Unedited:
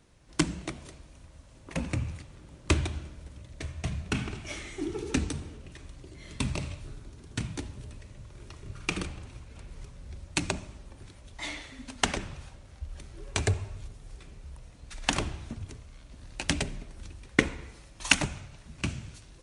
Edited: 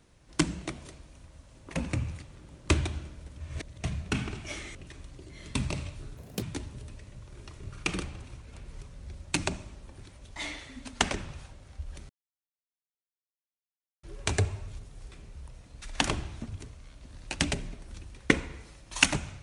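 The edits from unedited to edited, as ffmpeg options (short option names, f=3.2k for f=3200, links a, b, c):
-filter_complex "[0:a]asplit=7[a][b][c][d][e][f][g];[a]atrim=end=3.402[h];[b]atrim=start=3.398:end=3.822,asetpts=PTS-STARTPTS,areverse[i];[c]atrim=start=3.818:end=4.752[j];[d]atrim=start=5.598:end=7.024[k];[e]atrim=start=7.02:end=7.45,asetpts=PTS-STARTPTS,asetrate=74970,aresample=44100[l];[f]atrim=start=7.446:end=13.12,asetpts=PTS-STARTPTS,afade=t=out:st=5.67:d=0.004:c=hsin,apad=pad_dur=1.94[m];[g]atrim=start=13.12,asetpts=PTS-STARTPTS,afade=t=in:d=0.004:c=hsin[n];[h][i]acrossfade=d=0.004:c1=hsin:c2=hsin[o];[o][j]acrossfade=d=0.004:c1=hsin:c2=hsin[p];[p][k]acrossfade=d=0.004:c1=hsin:c2=hsin[q];[q][l]acrossfade=d=0.004:c1=hsin:c2=hsin[r];[m][n]concat=n=2:v=0:a=1[s];[r][s]acrossfade=d=0.004:c1=hsin:c2=hsin"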